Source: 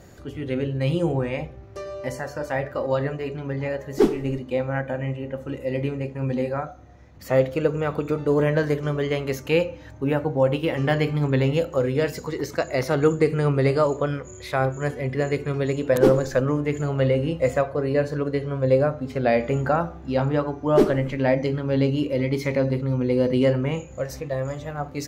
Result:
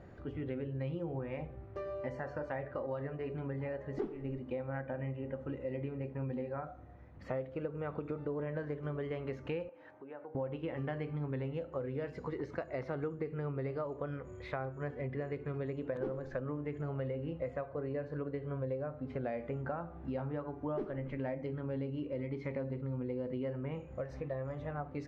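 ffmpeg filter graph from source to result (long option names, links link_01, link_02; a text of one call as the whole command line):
ffmpeg -i in.wav -filter_complex "[0:a]asettb=1/sr,asplit=3[link_01][link_02][link_03];[link_01]atrim=end=9.694[link_04];[link_02]atrim=start=9.69:end=10.35,asetpts=PTS-STARTPTS,afade=type=in:duration=0.004:curve=qsin,afade=type=out:start_time=0.656:duration=0.004:curve=qsin,equalizer=frequency=4200:width_type=o:width=2.1:gain=-3.5,acompressor=threshold=-35dB:ratio=6:attack=3.2:release=140:knee=1:detection=peak,highpass=420,lowpass=6000[link_05];[link_03]atrim=start=10.346[link_06];[link_04][link_05]acrossfade=duration=0.004:curve1=hsin:curve2=qsin[link_07];[link_07][link_06]acrossfade=duration=0.004:curve1=qsin:curve2=hsin,lowpass=2000,acompressor=threshold=-30dB:ratio=6,volume=-5.5dB" out.wav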